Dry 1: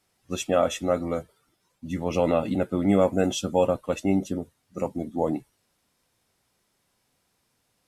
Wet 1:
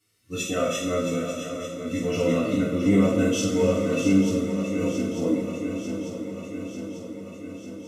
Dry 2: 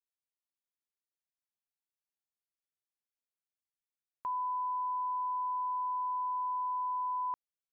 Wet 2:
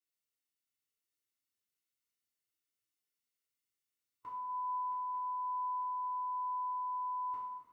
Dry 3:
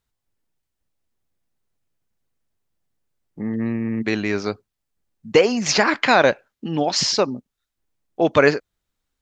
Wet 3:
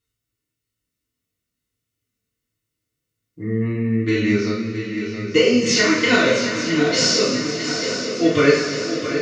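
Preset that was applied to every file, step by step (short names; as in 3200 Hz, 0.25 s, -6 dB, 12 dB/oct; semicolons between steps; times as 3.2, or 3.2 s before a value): bell 780 Hz -13.5 dB 1 oct; notch comb 810 Hz; on a send: swung echo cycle 0.894 s, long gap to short 3:1, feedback 64%, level -9.5 dB; on the sum: two-slope reverb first 0.46 s, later 3.4 s, from -16 dB, DRR -8 dB; harmonic-percussive split harmonic +6 dB; gain -7.5 dB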